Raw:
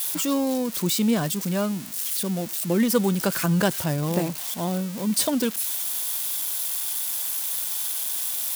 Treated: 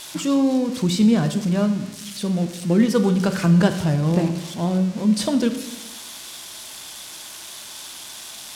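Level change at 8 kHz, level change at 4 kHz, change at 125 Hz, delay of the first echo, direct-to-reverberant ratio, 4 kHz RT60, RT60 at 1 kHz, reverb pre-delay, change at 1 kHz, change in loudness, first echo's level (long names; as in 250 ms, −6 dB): −6.5 dB, 0.0 dB, +6.5 dB, no echo audible, 8.0 dB, 0.85 s, 0.95 s, 10 ms, +1.0 dB, +4.0 dB, no echo audible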